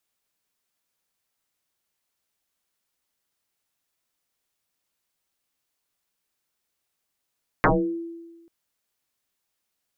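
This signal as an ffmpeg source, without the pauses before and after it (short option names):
-f lavfi -i "aevalsrc='0.224*pow(10,-3*t/1.29)*sin(2*PI*335*t+12*pow(10,-3*t/0.39)*sin(2*PI*0.46*335*t))':d=0.84:s=44100"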